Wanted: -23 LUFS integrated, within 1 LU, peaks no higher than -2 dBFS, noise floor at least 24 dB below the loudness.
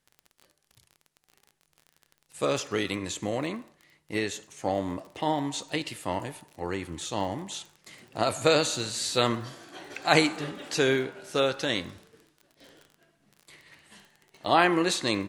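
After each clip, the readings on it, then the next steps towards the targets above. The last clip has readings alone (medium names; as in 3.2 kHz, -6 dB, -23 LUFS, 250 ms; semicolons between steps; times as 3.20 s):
tick rate 28 per s; loudness -28.0 LUFS; peak level -4.0 dBFS; loudness target -23.0 LUFS
-> de-click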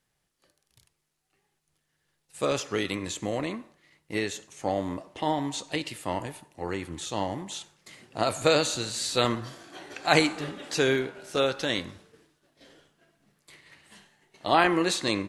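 tick rate 0 per s; loudness -28.0 LUFS; peak level -4.0 dBFS; loudness target -23.0 LUFS
-> trim +5 dB; peak limiter -2 dBFS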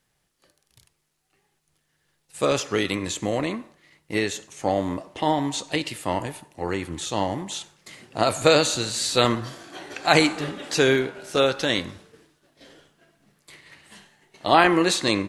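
loudness -23.5 LUFS; peak level -2.0 dBFS; noise floor -73 dBFS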